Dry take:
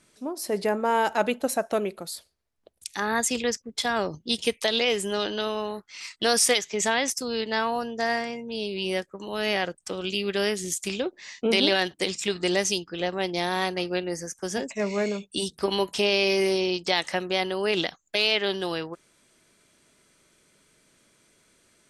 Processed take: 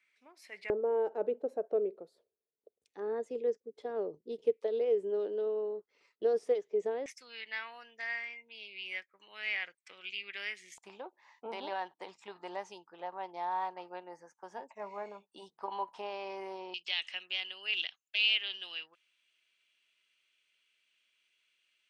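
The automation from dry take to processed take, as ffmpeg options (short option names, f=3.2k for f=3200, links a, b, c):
-af "asetnsamples=n=441:p=0,asendcmd='0.7 bandpass f 440;7.06 bandpass f 2200;10.78 bandpass f 910;16.74 bandpass f 2800',bandpass=f=2.2k:t=q:w=5.6:csg=0"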